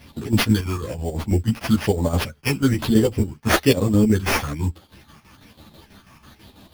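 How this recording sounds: phasing stages 8, 1.1 Hz, lowest notch 490–2200 Hz; chopped level 6.1 Hz, depth 60%, duty 65%; aliases and images of a low sample rate 7800 Hz, jitter 0%; a shimmering, thickened sound

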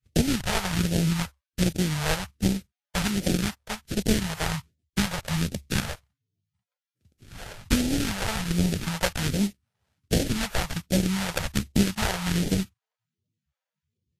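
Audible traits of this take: aliases and images of a low sample rate 1100 Hz, jitter 20%; phasing stages 2, 1.3 Hz, lowest notch 250–1100 Hz; Vorbis

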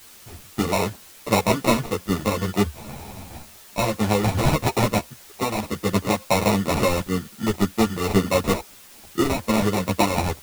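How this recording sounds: aliases and images of a low sample rate 1600 Hz, jitter 0%; tremolo saw up 0.57 Hz, depth 55%; a quantiser's noise floor 8-bit, dither triangular; a shimmering, thickened sound

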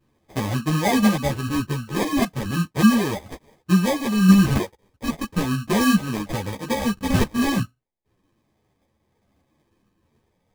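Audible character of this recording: phasing stages 6, 0.36 Hz, lowest notch 500–1300 Hz; aliases and images of a low sample rate 1400 Hz, jitter 0%; random-step tremolo; a shimmering, thickened sound

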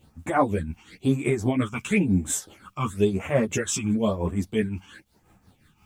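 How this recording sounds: phasing stages 8, 0.99 Hz, lowest notch 520–4400 Hz; a quantiser's noise floor 12-bit, dither triangular; tremolo triangle 5.7 Hz, depth 70%; a shimmering, thickened sound

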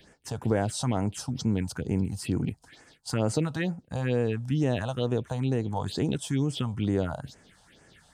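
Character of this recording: phasing stages 4, 2.2 Hz, lowest notch 330–3800 Hz

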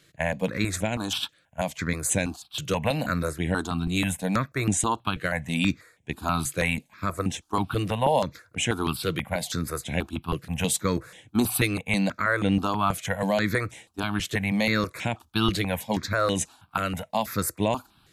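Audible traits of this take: notches that jump at a steady rate 6.2 Hz 230–4500 Hz

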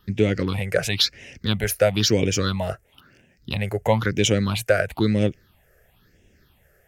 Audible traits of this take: phasing stages 6, 1 Hz, lowest notch 250–1200 Hz

